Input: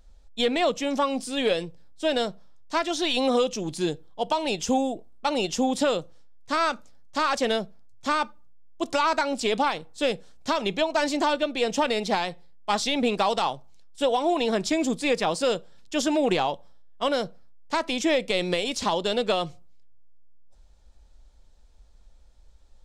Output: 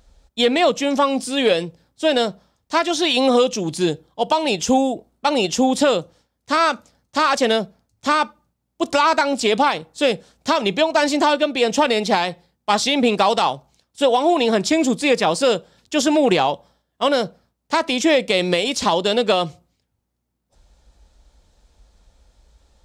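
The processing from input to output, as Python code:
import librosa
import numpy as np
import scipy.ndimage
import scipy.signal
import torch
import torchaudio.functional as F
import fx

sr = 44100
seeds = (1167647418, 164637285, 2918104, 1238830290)

y = scipy.signal.sosfilt(scipy.signal.butter(2, 50.0, 'highpass', fs=sr, output='sos'), x)
y = y * librosa.db_to_amplitude(7.0)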